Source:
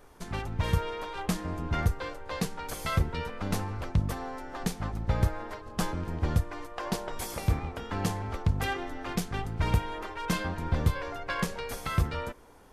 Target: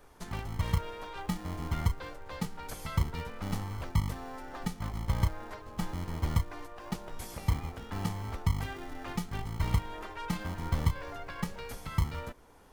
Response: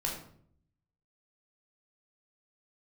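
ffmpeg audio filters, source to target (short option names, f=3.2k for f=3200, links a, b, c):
-filter_complex "[0:a]acrossover=split=300[a][b];[a]acrusher=samples=42:mix=1:aa=0.000001[c];[b]alimiter=level_in=6.5dB:limit=-24dB:level=0:latency=1:release=419,volume=-6.5dB[d];[c][d]amix=inputs=2:normalize=0,volume=-2dB"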